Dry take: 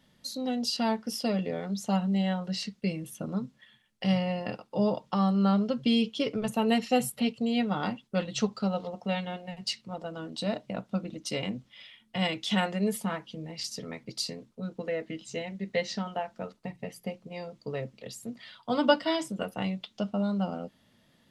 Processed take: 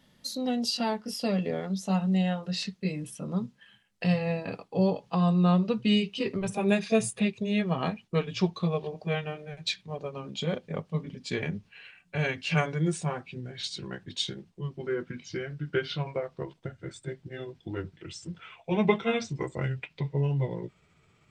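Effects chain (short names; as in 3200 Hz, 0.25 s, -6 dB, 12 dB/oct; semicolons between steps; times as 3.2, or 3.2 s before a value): gliding pitch shift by -6.5 st starting unshifted; gain +2 dB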